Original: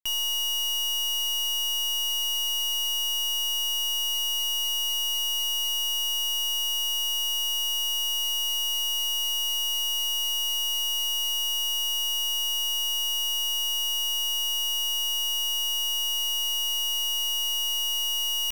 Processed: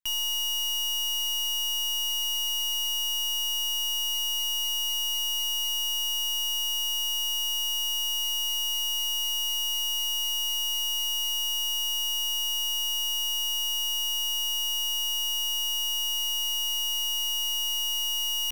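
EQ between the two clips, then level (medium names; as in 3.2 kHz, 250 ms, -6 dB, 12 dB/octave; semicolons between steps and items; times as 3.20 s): Chebyshev band-stop 340–700 Hz, order 5; -1.0 dB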